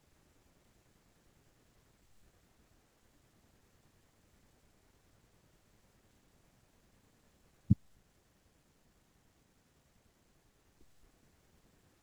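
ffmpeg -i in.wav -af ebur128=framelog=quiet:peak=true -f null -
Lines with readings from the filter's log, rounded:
Integrated loudness:
  I:         -34.3 LUFS
  Threshold: -57.7 LUFS
Loudness range:
  LRA:         0.0 LU
  Threshold: -67.1 LUFS
  LRA low:   -43.0 LUFS
  LRA high:  -43.0 LUFS
True peak:
  Peak:      -11.7 dBFS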